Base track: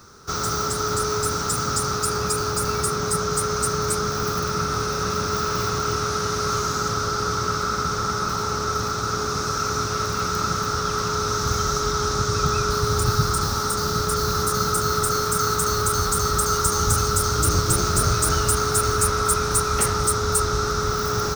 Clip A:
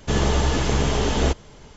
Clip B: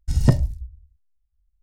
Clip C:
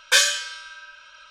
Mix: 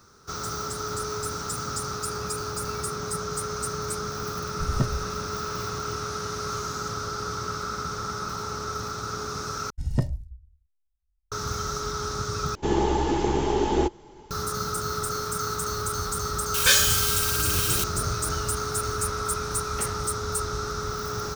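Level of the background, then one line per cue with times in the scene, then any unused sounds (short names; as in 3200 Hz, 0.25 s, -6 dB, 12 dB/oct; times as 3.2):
base track -7.5 dB
4.52 add B -9 dB
9.7 replace with B -8.5 dB + mismatched tape noise reduction decoder only
12.55 replace with A -8.5 dB + small resonant body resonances 360/840 Hz, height 17 dB
16.54 add C -3.5 dB + switching spikes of -13.5 dBFS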